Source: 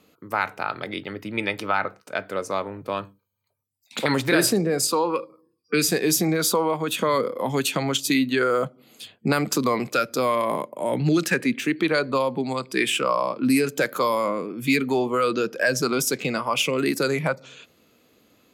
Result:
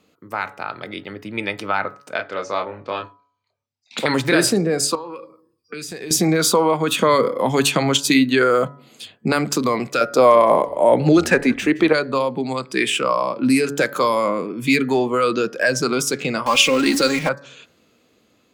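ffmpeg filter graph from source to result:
ffmpeg -i in.wav -filter_complex "[0:a]asettb=1/sr,asplit=3[link_01][link_02][link_03];[link_01]atrim=end=2.164[link_04];[link_02]atrim=start=2.16:end=3.98,asetpts=PTS-STARTPTS,afade=type=in:duration=0.004:curve=qsin,afade=type=out:start_time=1.816:duration=0.004:curve=qsin,lowpass=frequency=5700:width=0.5412,lowpass=frequency=5700:width=1.3066,lowshelf=frequency=390:gain=-7.5,asplit=2[link_05][link_06];[link_06]adelay=28,volume=-5dB[link_07];[link_05][link_07]amix=inputs=2:normalize=0,atrim=end_sample=80262[link_08];[link_03]atrim=start=3.976[link_09];[link_04][link_08]acrossfade=duration=0.004:curve1=hsin:curve2=qsin[link_10];[link_10][link_09]acrossfade=duration=0.004:curve1=qsin:curve2=hsin,asettb=1/sr,asplit=3[link_11][link_12][link_13];[link_11]atrim=end=4.954[link_14];[link_12]atrim=start=4.95:end=6.11,asetpts=PTS-STARTPTS,afade=type=in:duration=0.004:curve=qsin,afade=type=out:start_time=1.156:duration=0.004:curve=qsin,asubboost=boost=10.5:cutoff=94,acompressor=threshold=-33dB:ratio=6:attack=3.2:release=140:knee=1:detection=peak[link_15];[link_13]atrim=start=6.106[link_16];[link_14][link_15]acrossfade=duration=0.004:curve1=hsin:curve2=qsin[link_17];[link_17][link_16]acrossfade=duration=0.004:curve1=qsin:curve2=hsin,asettb=1/sr,asplit=3[link_18][link_19][link_20];[link_18]atrim=end=10.014[link_21];[link_19]atrim=start=10.01:end=11.93,asetpts=PTS-STARTPTS,afade=type=in:duration=0.004:curve=qsin,afade=type=out:start_time=1.916:duration=0.004:curve=qsin,equalizer=frequency=670:width_type=o:width=1.8:gain=10.5,asplit=4[link_22][link_23][link_24][link_25];[link_23]adelay=168,afreqshift=-68,volume=-21dB[link_26];[link_24]adelay=336,afreqshift=-136,volume=-28.3dB[link_27];[link_25]adelay=504,afreqshift=-204,volume=-35.7dB[link_28];[link_22][link_26][link_27][link_28]amix=inputs=4:normalize=0,atrim=end_sample=84672[link_29];[link_20]atrim=start=11.926[link_30];[link_21][link_29]acrossfade=duration=0.004:curve1=hsin:curve2=qsin[link_31];[link_31][link_30]acrossfade=duration=0.004:curve1=qsin:curve2=hsin,asettb=1/sr,asplit=3[link_32][link_33][link_34];[link_32]atrim=end=16.464[link_35];[link_33]atrim=start=16.46:end=17.29,asetpts=PTS-STARTPTS,afade=type=in:duration=0.004:curve=qsin,afade=type=out:start_time=0.826:duration=0.004:curve=qsin,aeval=exprs='val(0)+0.5*0.0316*sgn(val(0))':channel_layout=same,equalizer=frequency=4500:width_type=o:width=1.9:gain=5,aecho=1:1:3.7:0.6,atrim=end_sample=36603[link_36];[link_34]atrim=start=17.286[link_37];[link_35][link_36]acrossfade=duration=0.004:curve1=hsin:curve2=qsin[link_38];[link_38][link_37]acrossfade=duration=0.004:curve1=qsin:curve2=hsin,equalizer=frequency=12000:width=4.1:gain=-12,bandreject=frequency=141.4:width_type=h:width=4,bandreject=frequency=282.8:width_type=h:width=4,bandreject=frequency=424.2:width_type=h:width=4,bandreject=frequency=565.6:width_type=h:width=4,bandreject=frequency=707:width_type=h:width=4,bandreject=frequency=848.4:width_type=h:width=4,bandreject=frequency=989.8:width_type=h:width=4,bandreject=frequency=1131.2:width_type=h:width=4,bandreject=frequency=1272.6:width_type=h:width=4,bandreject=frequency=1414:width_type=h:width=4,bandreject=frequency=1555.4:width_type=h:width=4,bandreject=frequency=1696.8:width_type=h:width=4,bandreject=frequency=1838.2:width_type=h:width=4,bandreject=frequency=1979.6:width_type=h:width=4,dynaudnorm=framelen=760:gausssize=5:maxgain=11.5dB,volume=-1dB" out.wav

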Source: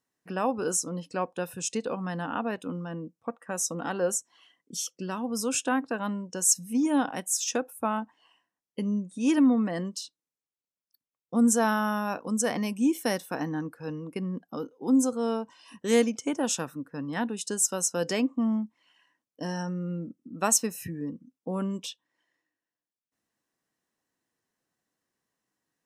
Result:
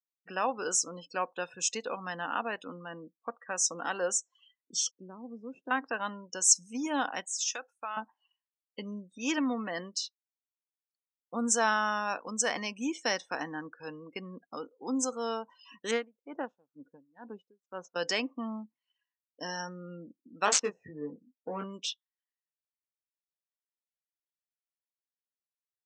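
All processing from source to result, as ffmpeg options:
ffmpeg -i in.wav -filter_complex "[0:a]asettb=1/sr,asplit=3[link_01][link_02][link_03];[link_01]atrim=end=4.914[link_04];[link_02]atrim=start=4.91:end=5.71,asetpts=PTS-STARTPTS,afade=type=in:duration=0.004:curve=qsin,afade=type=out:start_time=0.796:duration=0.004:curve=qsin,aeval=exprs='if(lt(val(0),0),0.708*val(0),val(0))':channel_layout=same,bandpass=frequency=210:width_type=q:width=1.1[link_05];[link_03]atrim=start=5.706[link_06];[link_04][link_05]acrossfade=duration=0.004:curve1=hsin:curve2=qsin[link_07];[link_07][link_06]acrossfade=duration=0.004:curve1=qsin:curve2=hsin,asettb=1/sr,asplit=3[link_08][link_09][link_10];[link_08]atrim=end=7.254[link_11];[link_09]atrim=start=7.25:end=7.97,asetpts=PTS-STARTPTS,afade=type=in:duration=0.004:curve=qsin,afade=type=out:start_time=0.716:duration=0.004:curve=qsin,highpass=frequency=1400:poles=1,acompressor=threshold=-30dB:ratio=8:attack=3.2:release=140:knee=1:detection=peak[link_12];[link_10]atrim=start=7.966[link_13];[link_11][link_12]acrossfade=duration=0.004:curve1=hsin:curve2=qsin[link_14];[link_14][link_13]acrossfade=duration=0.004:curve1=qsin:curve2=hsin,asettb=1/sr,asplit=3[link_15][link_16][link_17];[link_15]atrim=end=15.914[link_18];[link_16]atrim=start=15.91:end=17.96,asetpts=PTS-STARTPTS,afade=type=in:duration=0.004:curve=qsin,afade=type=out:start_time=2.046:duration=0.004:curve=qsin,adynamicsmooth=sensitivity=1:basefreq=1300,aeval=exprs='val(0)*pow(10,-26*(0.5-0.5*cos(2*PI*2.1*n/s))/20)':channel_layout=same[link_19];[link_17]atrim=start=17.956[link_20];[link_18][link_19]acrossfade=duration=0.004:curve1=hsin:curve2=qsin[link_21];[link_21][link_20]acrossfade=duration=0.004:curve1=qsin:curve2=hsin,asettb=1/sr,asplit=3[link_22][link_23][link_24];[link_22]atrim=end=20.454[link_25];[link_23]atrim=start=20.45:end=21.64,asetpts=PTS-STARTPTS,afade=type=in:duration=0.004:curve=qsin,afade=type=out:start_time=1.186:duration=0.004:curve=qsin,equalizer=frequency=440:width_type=o:width=0.23:gain=7.5,adynamicsmooth=sensitivity=2.5:basefreq=1100,asplit=2[link_26][link_27];[link_27]adelay=20,volume=-4dB[link_28];[link_26][link_28]amix=inputs=2:normalize=0,atrim=end_sample=52479[link_29];[link_24]atrim=start=21.636[link_30];[link_25][link_29]acrossfade=duration=0.004:curve1=hsin:curve2=qsin[link_31];[link_31][link_30]acrossfade=duration=0.004:curve1=qsin:curve2=hsin,lowpass=frequency=7100:width=0.5412,lowpass=frequency=7100:width=1.3066,afftdn=noise_reduction=27:noise_floor=-49,highpass=frequency=1400:poles=1,volume=4.5dB" out.wav

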